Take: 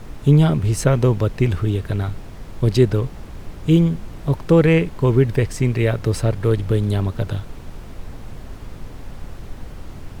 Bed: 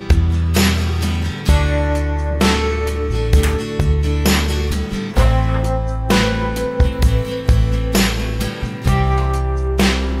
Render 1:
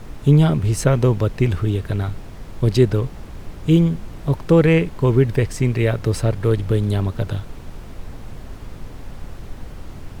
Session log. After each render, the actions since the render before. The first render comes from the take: no audible change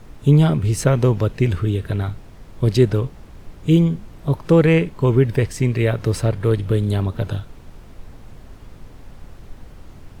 noise print and reduce 6 dB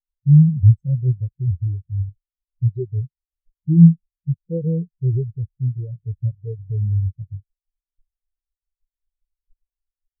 loudness maximiser +12 dB; spectral contrast expander 4:1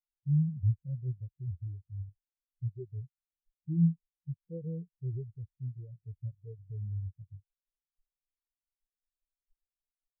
trim -16.5 dB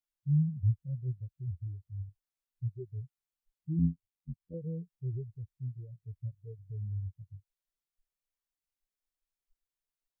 3.79–4.54 s: AM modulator 92 Hz, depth 60%

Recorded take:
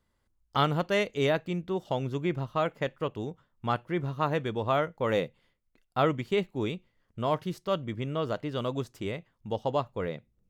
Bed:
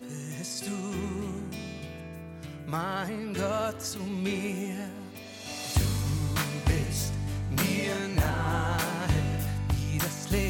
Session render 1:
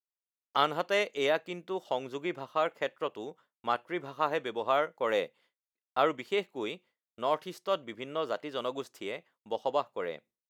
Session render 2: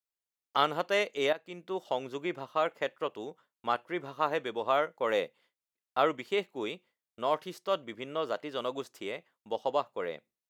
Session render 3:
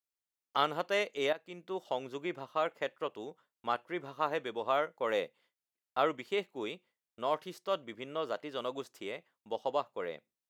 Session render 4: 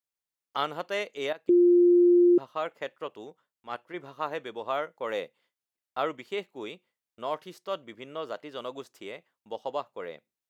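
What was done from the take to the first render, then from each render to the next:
high-pass 400 Hz 12 dB/octave; expander -56 dBFS
1.33–1.74 s: fade in, from -14.5 dB
trim -3 dB
1.49–2.38 s: bleep 351 Hz -15.5 dBFS; 3.24–3.94 s: transient shaper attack -8 dB, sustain -2 dB

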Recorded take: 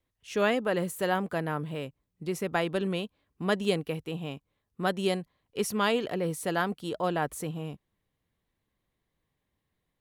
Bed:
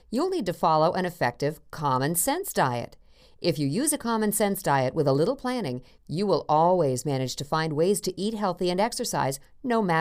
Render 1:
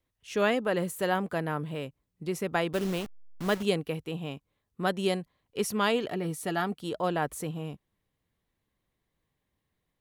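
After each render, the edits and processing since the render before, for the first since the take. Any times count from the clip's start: 2.73–3.63 s: send-on-delta sampling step -35 dBFS; 6.08–6.78 s: comb of notches 520 Hz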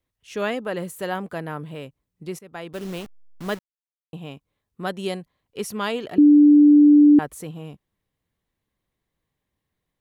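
2.39–2.99 s: fade in, from -18 dB; 3.59–4.13 s: mute; 6.18–7.19 s: bleep 294 Hz -8.5 dBFS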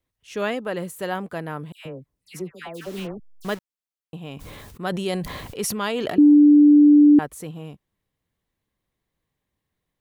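1.72–3.45 s: phase dispersion lows, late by 134 ms, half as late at 1.5 kHz; 4.24–6.34 s: decay stretcher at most 22 dB/s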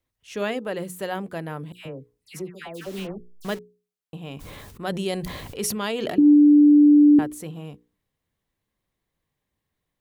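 hum notches 60/120/180/240/300/360/420/480 Hz; dynamic bell 1.2 kHz, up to -4 dB, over -41 dBFS, Q 1.1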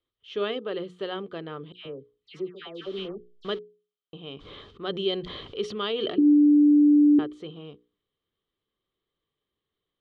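four-pole ladder low-pass 4.2 kHz, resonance 55%; small resonant body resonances 400/1200/3100 Hz, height 13 dB, ringing for 20 ms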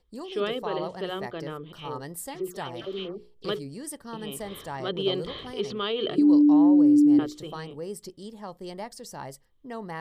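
add bed -13 dB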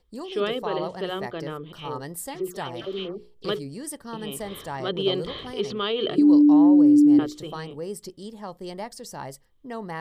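trim +2.5 dB

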